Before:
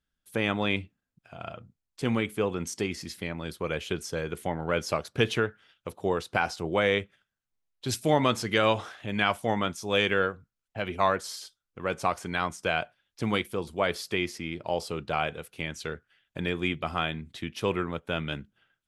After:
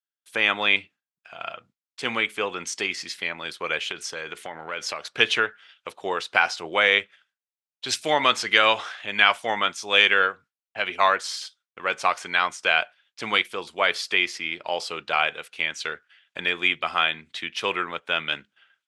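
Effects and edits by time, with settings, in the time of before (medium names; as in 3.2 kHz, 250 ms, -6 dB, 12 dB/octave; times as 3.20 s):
3.87–5.13 s: compression, threshold -30 dBFS
whole clip: frequency weighting ITU-R 468; gate with hold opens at -58 dBFS; tone controls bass -2 dB, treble -14 dB; trim +5.5 dB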